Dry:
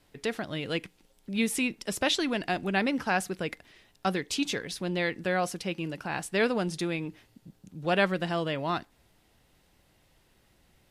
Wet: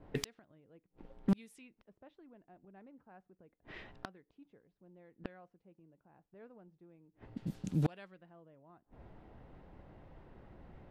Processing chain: flipped gate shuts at -29 dBFS, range -39 dB; low-pass opened by the level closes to 670 Hz, open at -44.5 dBFS; wavefolder -31.5 dBFS; gain +10.5 dB

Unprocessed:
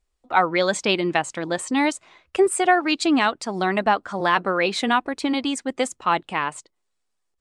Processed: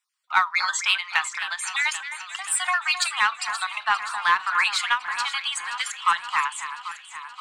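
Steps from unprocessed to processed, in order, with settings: random spectral dropouts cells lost 20%; steep high-pass 970 Hz 48 dB/oct; in parallel at -4.5 dB: soft clip -21 dBFS, distortion -10 dB; on the sum: echo with dull and thin repeats by turns 0.263 s, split 2500 Hz, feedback 78%, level -10 dB; on a send at -14 dB: reverb RT60 0.20 s, pre-delay 6 ms; on the sum: ending taper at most 270 dB/s

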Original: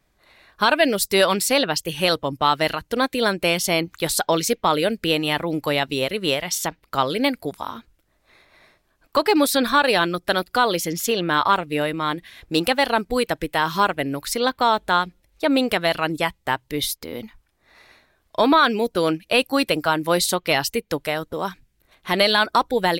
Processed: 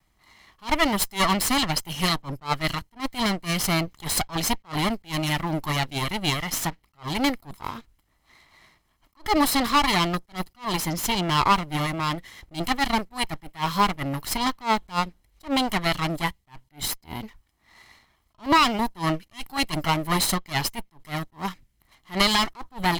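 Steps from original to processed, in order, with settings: minimum comb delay 0.97 ms; vibrato 0.45 Hz 8.7 cents; attack slew limiter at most 280 dB/s

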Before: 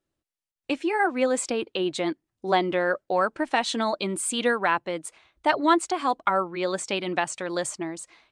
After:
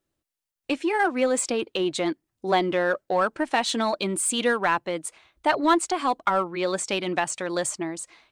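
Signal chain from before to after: high shelf 8700 Hz +5 dB; in parallel at -7.5 dB: overloaded stage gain 23 dB; on the sum: gain -1.5 dB

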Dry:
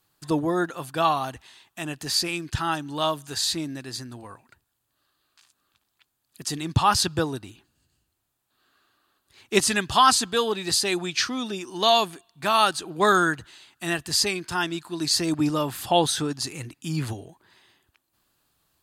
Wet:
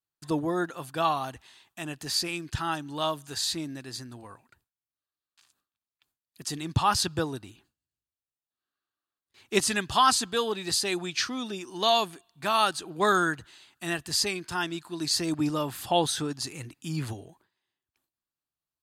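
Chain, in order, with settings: gate with hold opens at -45 dBFS; gain -4 dB

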